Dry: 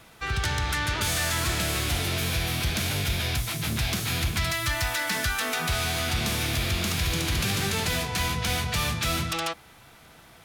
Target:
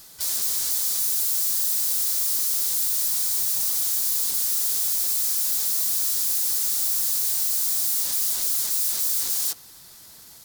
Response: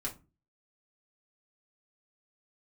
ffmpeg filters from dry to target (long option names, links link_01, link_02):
-filter_complex "[0:a]asplit=4[link_01][link_02][link_03][link_04];[link_02]asetrate=55563,aresample=44100,atempo=0.793701,volume=-3dB[link_05];[link_03]asetrate=58866,aresample=44100,atempo=0.749154,volume=-1dB[link_06];[link_04]asetrate=88200,aresample=44100,atempo=0.5,volume=-18dB[link_07];[link_01][link_05][link_06][link_07]amix=inputs=4:normalize=0,aeval=exprs='(mod(21.1*val(0)+1,2)-1)/21.1':channel_layout=same,aexciter=amount=3:drive=9.7:freq=3900,volume=-9dB"